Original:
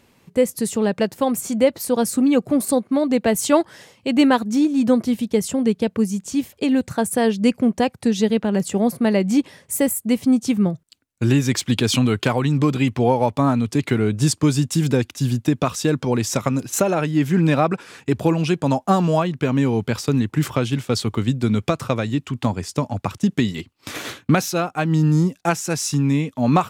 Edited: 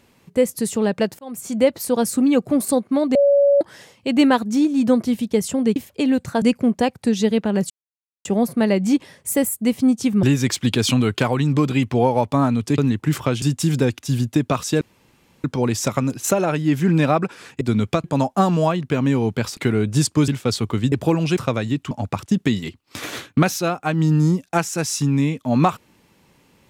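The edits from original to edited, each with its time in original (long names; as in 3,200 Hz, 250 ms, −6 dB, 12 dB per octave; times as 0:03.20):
0:01.19–0:01.61: fade in
0:03.15–0:03.61: beep over 565 Hz −11 dBFS
0:05.76–0:06.39: remove
0:07.05–0:07.41: remove
0:08.69: splice in silence 0.55 s
0:10.67–0:11.28: remove
0:13.83–0:14.54: swap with 0:20.08–0:20.72
0:15.93: splice in room tone 0.63 s
0:18.10–0:18.55: swap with 0:21.36–0:21.79
0:22.33–0:22.83: remove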